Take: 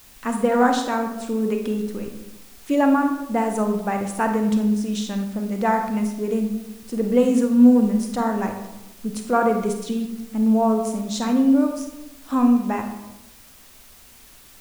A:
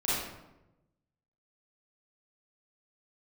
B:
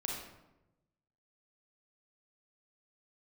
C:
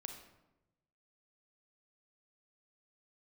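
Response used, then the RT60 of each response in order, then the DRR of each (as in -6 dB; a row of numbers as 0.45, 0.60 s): C; 0.95, 0.95, 1.0 s; -10.5, -2.0, 4.5 dB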